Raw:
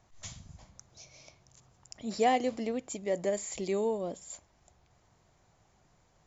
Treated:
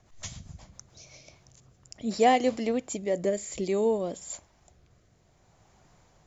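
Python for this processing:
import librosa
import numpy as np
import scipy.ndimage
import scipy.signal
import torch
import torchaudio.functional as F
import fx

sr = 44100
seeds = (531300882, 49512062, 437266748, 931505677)

y = fx.rotary_switch(x, sr, hz=7.5, then_hz=0.6, switch_at_s=0.69)
y = F.gain(torch.from_numpy(y), 6.5).numpy()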